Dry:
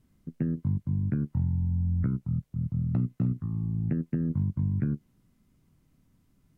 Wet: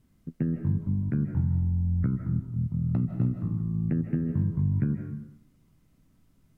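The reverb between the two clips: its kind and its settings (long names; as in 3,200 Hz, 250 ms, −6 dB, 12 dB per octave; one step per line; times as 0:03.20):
comb and all-pass reverb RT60 0.73 s, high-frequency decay 0.8×, pre-delay 115 ms, DRR 5 dB
level +1 dB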